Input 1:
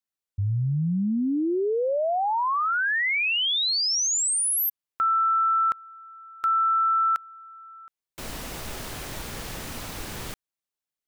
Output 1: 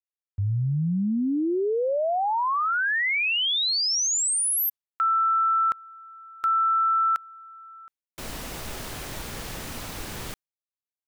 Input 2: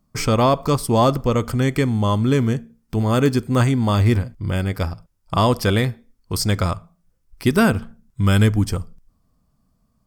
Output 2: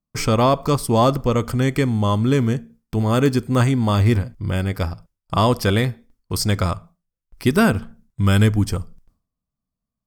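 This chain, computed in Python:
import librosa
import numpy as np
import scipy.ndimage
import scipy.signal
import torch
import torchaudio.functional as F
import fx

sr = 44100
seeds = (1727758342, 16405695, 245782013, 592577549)

y = fx.gate_hold(x, sr, open_db=-45.0, close_db=-48.0, hold_ms=14.0, range_db=-20, attack_ms=0.27, release_ms=186.0)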